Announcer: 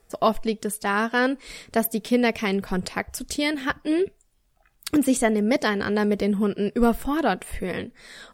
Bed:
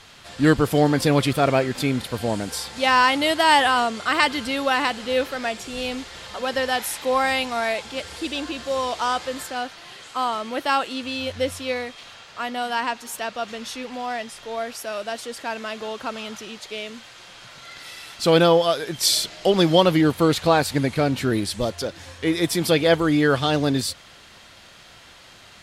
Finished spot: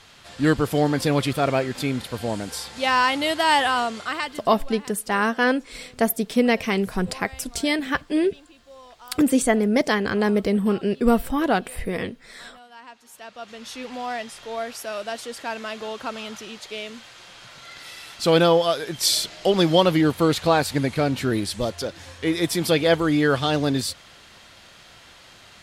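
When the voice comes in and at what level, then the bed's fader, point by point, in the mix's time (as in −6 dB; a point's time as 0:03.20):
4.25 s, +1.5 dB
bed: 0:03.98 −2.5 dB
0:04.64 −21.5 dB
0:12.70 −21.5 dB
0:13.86 −1 dB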